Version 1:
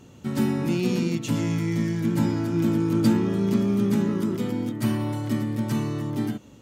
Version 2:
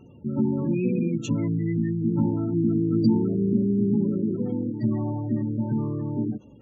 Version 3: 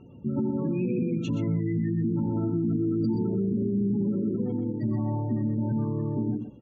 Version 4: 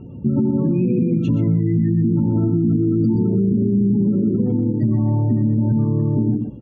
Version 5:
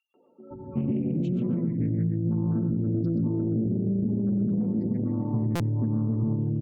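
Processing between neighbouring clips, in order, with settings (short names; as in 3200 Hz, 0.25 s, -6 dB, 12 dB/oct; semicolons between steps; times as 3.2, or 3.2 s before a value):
spectral gate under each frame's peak -20 dB strong
air absorption 160 m; tapped delay 90/124 ms -18.5/-7 dB; limiter -19.5 dBFS, peak gain reduction 9.5 dB
low shelf 370 Hz +10 dB; compressor 2.5:1, threshold -21 dBFS, peak gain reduction 5 dB; high shelf 3900 Hz -11 dB; gain +5.5 dB
three bands offset in time highs, mids, lows 0.14/0.51 s, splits 450/2400 Hz; stuck buffer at 5.55, samples 256, times 8; Doppler distortion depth 0.27 ms; gain -8 dB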